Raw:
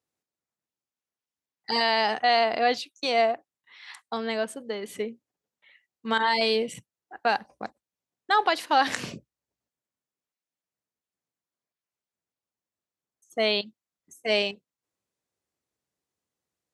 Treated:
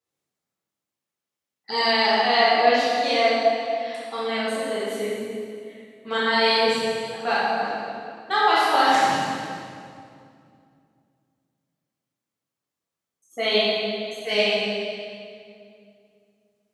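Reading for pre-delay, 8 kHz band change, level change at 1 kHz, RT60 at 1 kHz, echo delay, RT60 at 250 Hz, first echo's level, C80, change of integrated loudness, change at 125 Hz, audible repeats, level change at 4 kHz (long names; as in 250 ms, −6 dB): 3 ms, +5.0 dB, +5.0 dB, 2.2 s, no echo audible, 3.0 s, no echo audible, −1.0 dB, +4.0 dB, +6.0 dB, no echo audible, +5.5 dB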